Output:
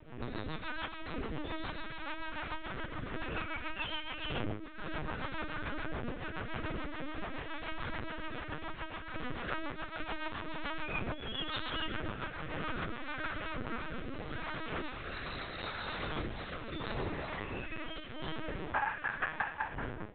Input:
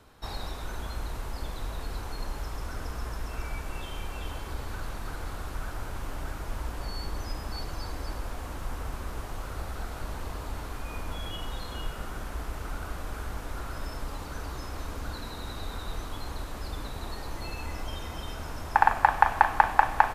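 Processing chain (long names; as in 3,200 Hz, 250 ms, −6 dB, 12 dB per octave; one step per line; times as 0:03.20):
fade-out on the ending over 3.97 s
wind on the microphone 300 Hz −34 dBFS
dynamic equaliser 240 Hz, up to +3 dB, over −47 dBFS, Q 6.1
0:14.90–0:17.54: high-pass filter 53 Hz 6 dB per octave
resonators tuned to a chord G#2 minor, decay 0.36 s
tape delay 371 ms, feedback 43%, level −21.5 dB, low-pass 1,400 Hz
sample-and-hold tremolo
linear-prediction vocoder at 8 kHz pitch kept
automatic gain control gain up to 9 dB
rotating-speaker cabinet horn 7 Hz, later 0.8 Hz, at 0:13.05
downward compressor 6 to 1, threshold −40 dBFS, peak gain reduction 21.5 dB
parametric band 2,300 Hz +13.5 dB 2.9 octaves
level +4.5 dB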